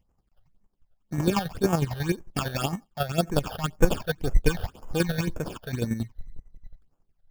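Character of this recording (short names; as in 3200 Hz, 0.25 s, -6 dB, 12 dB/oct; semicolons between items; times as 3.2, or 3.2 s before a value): aliases and images of a low sample rate 2000 Hz, jitter 0%; chopped level 11 Hz, depth 60%, duty 30%; phasing stages 8, 1.9 Hz, lowest notch 290–4100 Hz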